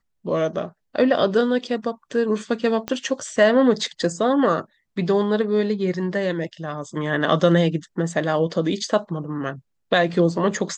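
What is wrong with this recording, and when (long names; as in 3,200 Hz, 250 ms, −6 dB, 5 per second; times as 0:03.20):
0:02.88: click −12 dBFS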